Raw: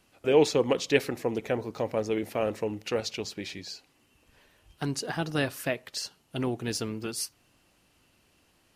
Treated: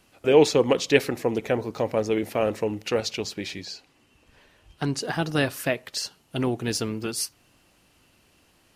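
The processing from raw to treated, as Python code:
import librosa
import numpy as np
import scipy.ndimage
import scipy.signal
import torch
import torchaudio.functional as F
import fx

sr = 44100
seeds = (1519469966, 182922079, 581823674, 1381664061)

y = fx.high_shelf(x, sr, hz=11000.0, db=-12.0, at=(3.65, 5.01))
y = y * 10.0 ** (4.5 / 20.0)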